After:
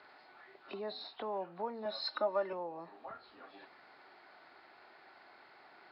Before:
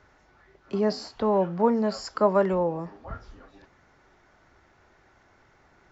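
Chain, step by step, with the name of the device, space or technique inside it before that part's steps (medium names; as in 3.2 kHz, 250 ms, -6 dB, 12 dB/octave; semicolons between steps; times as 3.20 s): hearing aid with frequency lowering (knee-point frequency compression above 2.7 kHz 1.5:1; compression 2:1, threshold -49 dBFS, peak gain reduction 17.5 dB; cabinet simulation 380–6400 Hz, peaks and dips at 510 Hz -4 dB, 740 Hz +4 dB, 2.5 kHz +3 dB, 4.2 kHz +7 dB); 1.85–2.53 s: comb 3.4 ms, depth 97%; trim +1.5 dB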